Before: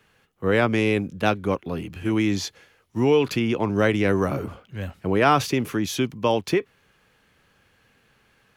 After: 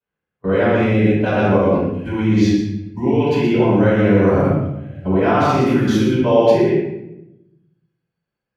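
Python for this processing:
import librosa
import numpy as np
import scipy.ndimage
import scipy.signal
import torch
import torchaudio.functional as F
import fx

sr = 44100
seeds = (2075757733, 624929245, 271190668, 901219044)

p1 = fx.noise_reduce_blind(x, sr, reduce_db=18)
p2 = fx.rider(p1, sr, range_db=3, speed_s=2.0)
p3 = p1 + (p2 * librosa.db_to_amplitude(-1.0))
p4 = fx.lowpass(p3, sr, hz=1500.0, slope=6)
p5 = p4 + 10.0 ** (-4.5 / 20.0) * np.pad(p4, (int(120 * sr / 1000.0), 0))[:len(p4)]
p6 = fx.level_steps(p5, sr, step_db=23)
p7 = scipy.signal.sosfilt(scipy.signal.butter(2, 52.0, 'highpass', fs=sr, output='sos'), p6)
p8 = fx.room_shoebox(p7, sr, seeds[0], volume_m3=270.0, walls='mixed', distance_m=6.7)
y = p8 * librosa.db_to_amplitude(-7.5)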